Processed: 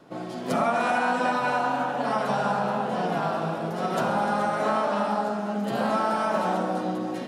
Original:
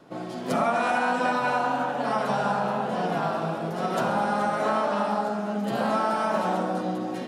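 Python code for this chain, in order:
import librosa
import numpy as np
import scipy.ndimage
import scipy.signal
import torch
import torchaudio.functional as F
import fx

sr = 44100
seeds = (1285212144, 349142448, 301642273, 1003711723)

y = x + fx.echo_single(x, sr, ms=299, db=-15.0, dry=0)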